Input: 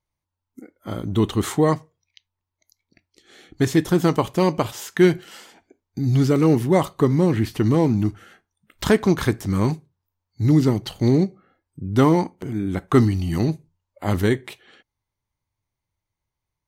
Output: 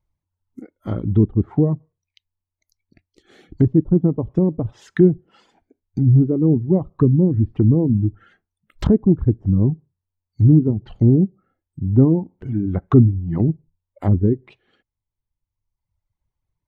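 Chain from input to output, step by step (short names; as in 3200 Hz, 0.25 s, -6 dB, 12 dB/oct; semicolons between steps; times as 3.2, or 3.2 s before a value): tilt -2.5 dB/oct; reverb removal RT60 1.4 s; treble ducked by the level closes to 370 Hz, closed at -14 dBFS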